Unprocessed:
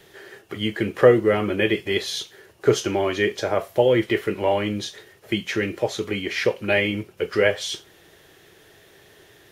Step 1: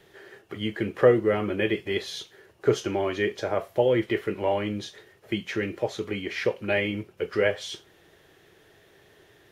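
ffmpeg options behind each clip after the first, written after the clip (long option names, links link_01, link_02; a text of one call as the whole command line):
ffmpeg -i in.wav -af "highshelf=frequency=3700:gain=-6.5,volume=-4dB" out.wav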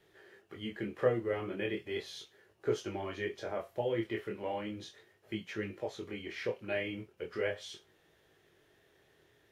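ffmpeg -i in.wav -af "flanger=delay=18.5:depth=7.9:speed=0.37,volume=-7.5dB" out.wav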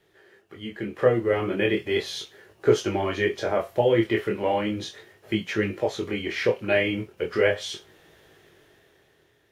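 ffmpeg -i in.wav -af "dynaudnorm=framelen=240:gausssize=9:maxgain=10.5dB,volume=2.5dB" out.wav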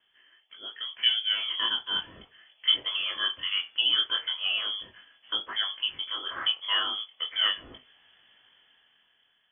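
ffmpeg -i in.wav -af "lowpass=frequency=3000:width_type=q:width=0.5098,lowpass=frequency=3000:width_type=q:width=0.6013,lowpass=frequency=3000:width_type=q:width=0.9,lowpass=frequency=3000:width_type=q:width=2.563,afreqshift=-3500,volume=-5dB" out.wav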